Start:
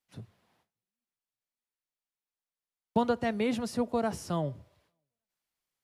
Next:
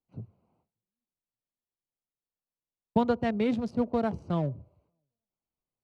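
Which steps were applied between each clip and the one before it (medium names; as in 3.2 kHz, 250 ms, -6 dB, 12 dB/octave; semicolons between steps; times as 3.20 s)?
local Wiener filter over 25 samples; low-pass 6.5 kHz 12 dB/octave; bass shelf 320 Hz +5 dB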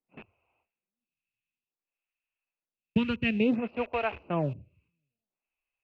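in parallel at -10 dB: word length cut 6-bit, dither none; on the sum: resonant low-pass 2.6 kHz, resonance Q 15; lamp-driven phase shifter 0.57 Hz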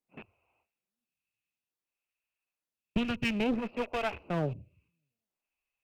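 one-sided clip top -34.5 dBFS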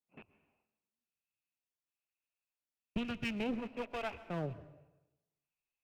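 plate-style reverb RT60 1 s, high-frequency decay 0.75×, pre-delay 110 ms, DRR 16 dB; trim -7 dB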